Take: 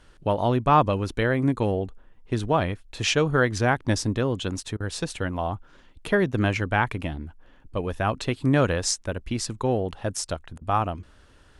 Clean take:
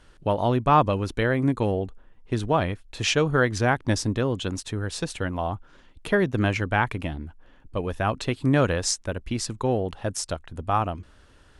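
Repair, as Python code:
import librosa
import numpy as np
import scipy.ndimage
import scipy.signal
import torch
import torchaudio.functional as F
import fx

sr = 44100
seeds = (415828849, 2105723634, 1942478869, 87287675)

y = fx.fix_interpolate(x, sr, at_s=(4.77, 10.58), length_ms=32.0)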